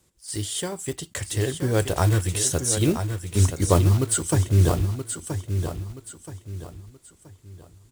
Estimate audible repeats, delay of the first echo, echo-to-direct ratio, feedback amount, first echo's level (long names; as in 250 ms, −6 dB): 3, 976 ms, −7.5 dB, 34%, −8.0 dB